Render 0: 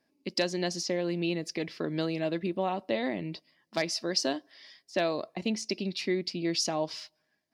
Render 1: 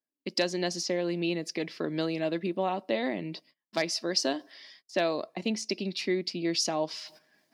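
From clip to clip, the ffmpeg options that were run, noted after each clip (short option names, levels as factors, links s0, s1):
-af "agate=range=0.0631:threshold=0.00141:ratio=16:detection=peak,highpass=160,areverse,acompressor=mode=upward:threshold=0.00794:ratio=2.5,areverse,volume=1.12"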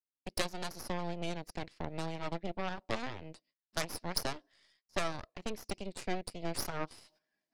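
-af "highshelf=f=8400:g=-5,aeval=exprs='0.2*(cos(1*acos(clip(val(0)/0.2,-1,1)))-cos(1*PI/2))+0.0562*(cos(3*acos(clip(val(0)/0.2,-1,1)))-cos(3*PI/2))+0.0282*(cos(6*acos(clip(val(0)/0.2,-1,1)))-cos(6*PI/2))':c=same,volume=0.794"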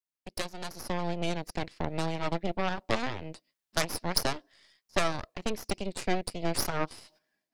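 -af "dynaudnorm=f=560:g=3:m=2.82,volume=0.794"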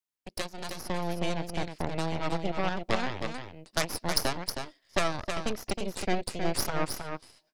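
-af "aecho=1:1:316:0.473"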